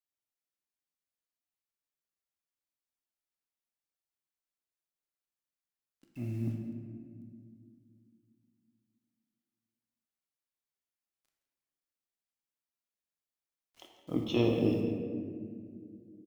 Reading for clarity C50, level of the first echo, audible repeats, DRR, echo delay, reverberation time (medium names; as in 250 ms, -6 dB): 3.0 dB, -14.0 dB, 1, 0.5 dB, 168 ms, 2.1 s